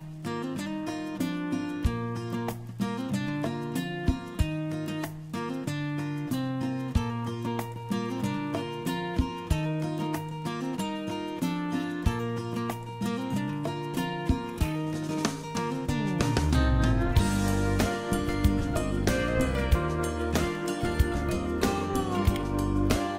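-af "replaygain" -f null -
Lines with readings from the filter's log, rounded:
track_gain = +12.0 dB
track_peak = 0.220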